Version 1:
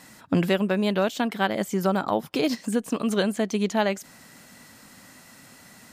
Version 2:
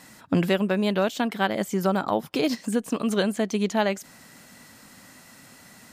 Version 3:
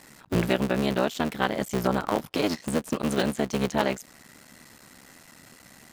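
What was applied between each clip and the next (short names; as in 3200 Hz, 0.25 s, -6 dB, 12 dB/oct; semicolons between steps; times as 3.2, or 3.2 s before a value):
nothing audible
cycle switcher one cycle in 3, muted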